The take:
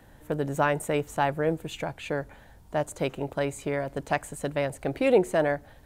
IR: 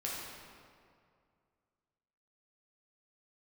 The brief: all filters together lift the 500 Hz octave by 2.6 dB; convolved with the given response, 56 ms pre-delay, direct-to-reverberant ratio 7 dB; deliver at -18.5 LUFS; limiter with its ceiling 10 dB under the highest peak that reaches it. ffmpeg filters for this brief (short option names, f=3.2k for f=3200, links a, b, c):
-filter_complex "[0:a]equalizer=f=500:t=o:g=3,alimiter=limit=-17dB:level=0:latency=1,asplit=2[a][b];[1:a]atrim=start_sample=2205,adelay=56[c];[b][c]afir=irnorm=-1:irlink=0,volume=-10dB[d];[a][d]amix=inputs=2:normalize=0,volume=10dB"